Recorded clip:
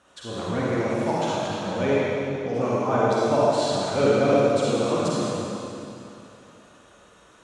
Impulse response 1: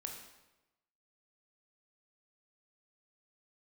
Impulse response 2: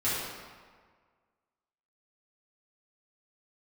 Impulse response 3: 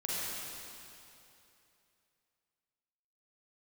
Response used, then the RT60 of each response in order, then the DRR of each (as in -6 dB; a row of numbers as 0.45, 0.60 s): 3; 1.0, 1.7, 2.8 s; 2.0, -12.0, -7.5 dB